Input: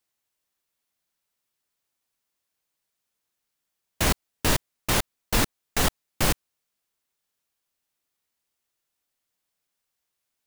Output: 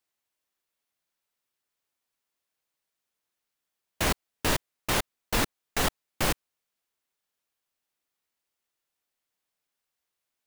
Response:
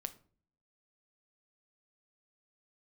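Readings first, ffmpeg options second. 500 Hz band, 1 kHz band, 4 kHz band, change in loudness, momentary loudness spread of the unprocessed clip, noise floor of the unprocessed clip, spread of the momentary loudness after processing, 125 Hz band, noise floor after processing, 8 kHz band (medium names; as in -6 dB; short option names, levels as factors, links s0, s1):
-2.0 dB, -1.5 dB, -3.0 dB, -3.0 dB, 2 LU, -82 dBFS, 2 LU, -5.5 dB, -85 dBFS, -4.5 dB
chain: -af "bass=f=250:g=-4,treble=f=4000:g=-3,volume=0.841"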